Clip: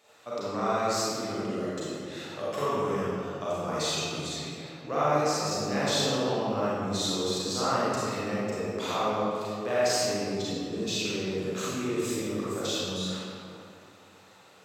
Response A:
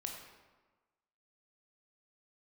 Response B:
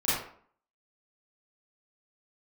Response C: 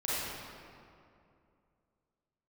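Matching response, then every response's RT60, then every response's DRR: C; 1.3, 0.55, 2.5 seconds; 1.0, −12.0, −10.0 decibels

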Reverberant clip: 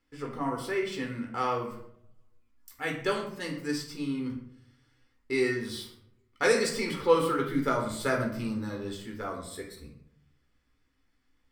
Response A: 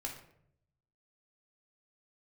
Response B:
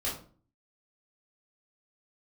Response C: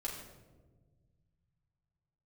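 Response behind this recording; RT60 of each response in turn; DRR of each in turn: A; 0.70, 0.45, 1.4 seconds; 0.0, −8.0, −5.5 decibels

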